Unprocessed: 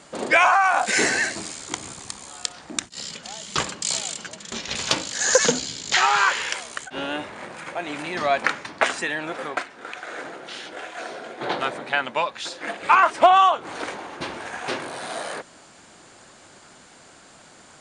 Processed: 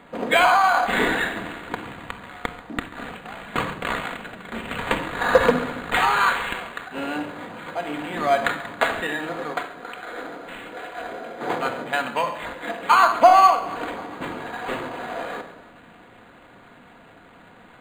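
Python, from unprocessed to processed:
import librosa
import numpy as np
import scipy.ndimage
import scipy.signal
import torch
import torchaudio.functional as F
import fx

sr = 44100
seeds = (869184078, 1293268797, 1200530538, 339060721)

p1 = x + fx.echo_feedback(x, sr, ms=137, feedback_pct=60, wet_db=-19, dry=0)
p2 = fx.room_shoebox(p1, sr, seeds[0], volume_m3=2000.0, walls='furnished', distance_m=1.8)
y = np.interp(np.arange(len(p2)), np.arange(len(p2))[::8], p2[::8])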